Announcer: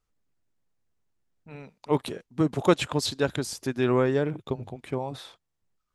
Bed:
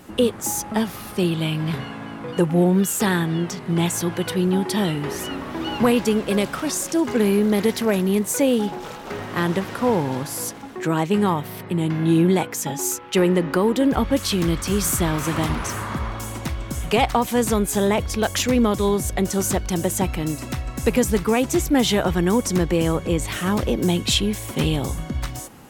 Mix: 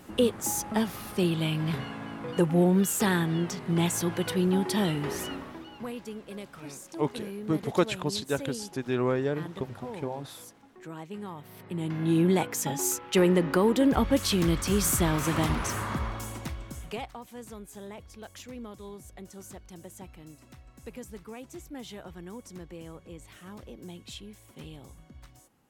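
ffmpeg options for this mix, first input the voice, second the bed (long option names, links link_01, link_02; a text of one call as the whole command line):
ffmpeg -i stem1.wav -i stem2.wav -filter_complex "[0:a]adelay=5100,volume=-4dB[link_01];[1:a]volume=11dB,afade=type=out:start_time=5.19:duration=0.48:silence=0.177828,afade=type=in:start_time=11.33:duration=1.23:silence=0.158489,afade=type=out:start_time=15.89:duration=1.22:silence=0.105925[link_02];[link_01][link_02]amix=inputs=2:normalize=0" out.wav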